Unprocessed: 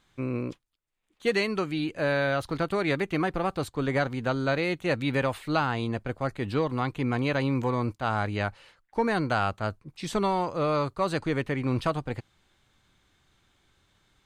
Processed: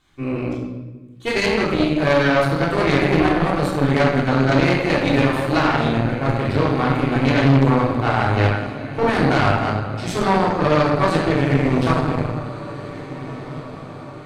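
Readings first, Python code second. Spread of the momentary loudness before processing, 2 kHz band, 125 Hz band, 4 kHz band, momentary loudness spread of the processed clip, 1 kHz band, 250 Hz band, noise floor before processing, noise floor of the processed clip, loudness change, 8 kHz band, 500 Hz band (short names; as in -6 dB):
6 LU, +9.0 dB, +12.0 dB, +9.5 dB, 15 LU, +9.5 dB, +11.0 dB, -70 dBFS, -35 dBFS, +10.0 dB, +9.0 dB, +9.0 dB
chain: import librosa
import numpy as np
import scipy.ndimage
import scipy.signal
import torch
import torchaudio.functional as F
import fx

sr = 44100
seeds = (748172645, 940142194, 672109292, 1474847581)

y = fx.echo_diffused(x, sr, ms=1652, feedback_pct=52, wet_db=-14.0)
y = fx.room_shoebox(y, sr, seeds[0], volume_m3=810.0, walls='mixed', distance_m=3.4)
y = fx.cheby_harmonics(y, sr, harmonics=(6, 8), levels_db=(-12, -24), full_scale_db=-4.0)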